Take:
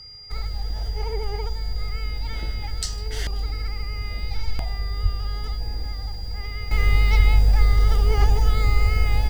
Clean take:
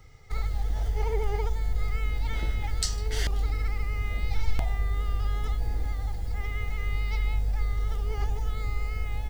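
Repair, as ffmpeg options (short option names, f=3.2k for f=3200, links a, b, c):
-filter_complex "[0:a]bandreject=f=4.8k:w=30,asplit=3[a][b][c];[a]afade=t=out:st=5.02:d=0.02[d];[b]highpass=f=140:w=0.5412,highpass=f=140:w=1.3066,afade=t=in:st=5.02:d=0.02,afade=t=out:st=5.14:d=0.02[e];[c]afade=t=in:st=5.14:d=0.02[f];[d][e][f]amix=inputs=3:normalize=0,asplit=3[g][h][i];[g]afade=t=out:st=7.18:d=0.02[j];[h]highpass=f=140:w=0.5412,highpass=f=140:w=1.3066,afade=t=in:st=7.18:d=0.02,afade=t=out:st=7.3:d=0.02[k];[i]afade=t=in:st=7.3:d=0.02[l];[j][k][l]amix=inputs=3:normalize=0,asplit=3[m][n][o];[m]afade=t=out:st=8.84:d=0.02[p];[n]highpass=f=140:w=0.5412,highpass=f=140:w=1.3066,afade=t=in:st=8.84:d=0.02,afade=t=out:st=8.96:d=0.02[q];[o]afade=t=in:st=8.96:d=0.02[r];[p][q][r]amix=inputs=3:normalize=0,asetnsamples=n=441:p=0,asendcmd='6.71 volume volume -11dB',volume=0dB"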